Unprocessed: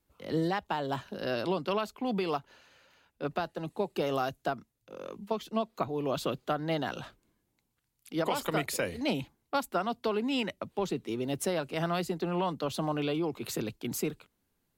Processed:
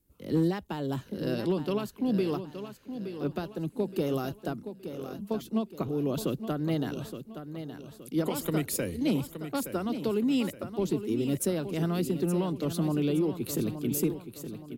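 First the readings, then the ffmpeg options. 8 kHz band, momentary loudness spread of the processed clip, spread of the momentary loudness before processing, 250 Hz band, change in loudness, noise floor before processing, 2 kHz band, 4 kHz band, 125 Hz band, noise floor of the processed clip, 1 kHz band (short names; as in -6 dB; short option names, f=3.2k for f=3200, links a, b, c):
+3.5 dB, 11 LU, 6 LU, +5.5 dB, +2.0 dB, -79 dBFS, -5.5 dB, -3.0 dB, +6.0 dB, -52 dBFS, -6.5 dB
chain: -filter_complex "[0:a]firequalizer=gain_entry='entry(310,0);entry(700,-13);entry(11000,1)':delay=0.05:min_phase=1,volume=24.5dB,asoftclip=hard,volume=-24.5dB,asplit=2[a][b];[b]aecho=0:1:870|1740|2610|3480:0.316|0.126|0.0506|0.0202[c];[a][c]amix=inputs=2:normalize=0,volume=5.5dB"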